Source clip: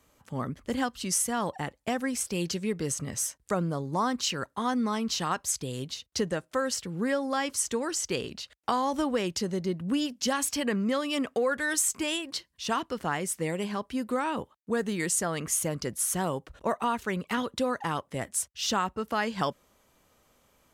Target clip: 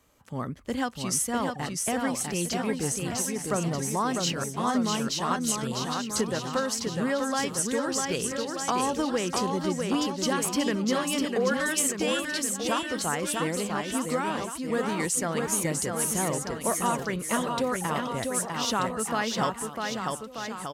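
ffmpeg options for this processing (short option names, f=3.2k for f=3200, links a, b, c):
-af "aecho=1:1:650|1235|1762|2235|2662:0.631|0.398|0.251|0.158|0.1"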